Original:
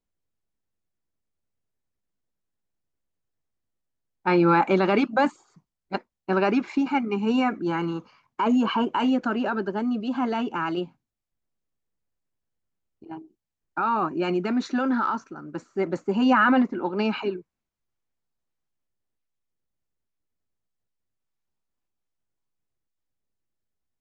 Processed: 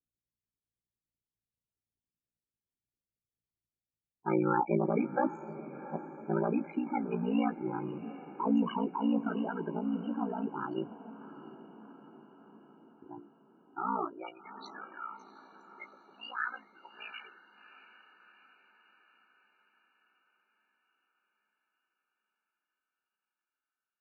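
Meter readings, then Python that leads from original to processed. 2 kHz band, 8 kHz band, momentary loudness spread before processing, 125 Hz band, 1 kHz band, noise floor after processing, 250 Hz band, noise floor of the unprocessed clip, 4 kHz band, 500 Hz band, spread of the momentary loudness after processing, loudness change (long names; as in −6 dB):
−13.5 dB, can't be measured, 15 LU, −7.0 dB, −10.5 dB, below −85 dBFS, −9.5 dB, −85 dBFS, −15.0 dB, −10.0 dB, 21 LU, −9.5 dB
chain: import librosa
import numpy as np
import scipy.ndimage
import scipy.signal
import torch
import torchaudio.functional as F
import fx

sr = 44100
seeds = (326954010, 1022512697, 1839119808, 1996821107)

p1 = fx.peak_eq(x, sr, hz=2700.0, db=-3.0, octaves=2.5)
p2 = fx.spec_topn(p1, sr, count=16)
p3 = fx.filter_sweep_highpass(p2, sr, from_hz=63.0, to_hz=2100.0, start_s=13.62, end_s=14.44, q=1.5)
p4 = p3 * np.sin(2.0 * np.pi * 29.0 * np.arange(len(p3)) / sr)
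p5 = fx.wow_flutter(p4, sr, seeds[0], rate_hz=2.1, depth_cents=28.0)
p6 = fx.doubler(p5, sr, ms=18.0, db=-11)
p7 = p6 + fx.echo_diffused(p6, sr, ms=725, feedback_pct=56, wet_db=-14.5, dry=0)
y = p7 * librosa.db_to_amplitude(-5.5)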